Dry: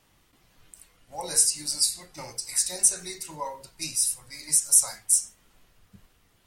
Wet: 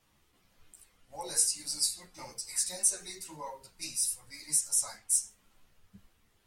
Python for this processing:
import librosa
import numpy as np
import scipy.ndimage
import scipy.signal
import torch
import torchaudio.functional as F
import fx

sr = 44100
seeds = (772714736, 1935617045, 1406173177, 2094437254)

y = fx.high_shelf(x, sr, hz=9500.0, db=-9.0, at=(4.67, 5.1))
y = fx.ensemble(y, sr)
y = y * librosa.db_to_amplitude(-3.0)